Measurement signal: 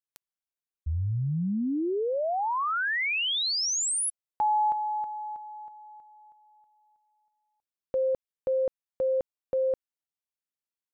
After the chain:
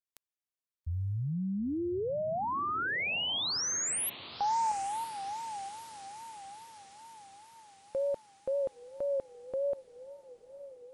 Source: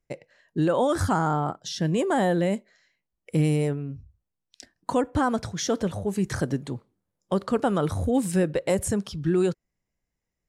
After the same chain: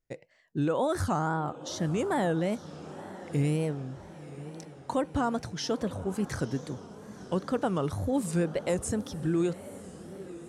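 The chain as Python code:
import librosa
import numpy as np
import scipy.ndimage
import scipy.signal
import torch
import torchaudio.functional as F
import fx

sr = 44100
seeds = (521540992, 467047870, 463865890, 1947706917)

y = fx.echo_diffused(x, sr, ms=924, feedback_pct=55, wet_db=-15.0)
y = fx.wow_flutter(y, sr, seeds[0], rate_hz=2.1, depth_cents=130.0)
y = y * 10.0 ** (-5.0 / 20.0)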